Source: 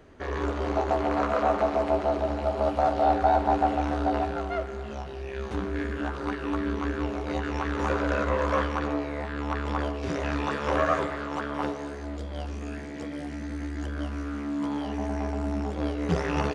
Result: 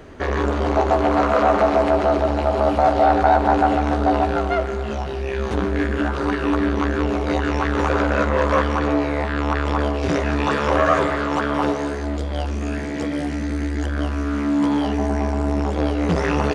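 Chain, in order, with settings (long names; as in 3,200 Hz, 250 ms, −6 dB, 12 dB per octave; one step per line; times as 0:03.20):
in parallel at +1 dB: brickwall limiter −21.5 dBFS, peak gain reduction 10 dB
on the sum: saturating transformer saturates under 450 Hz
level +5 dB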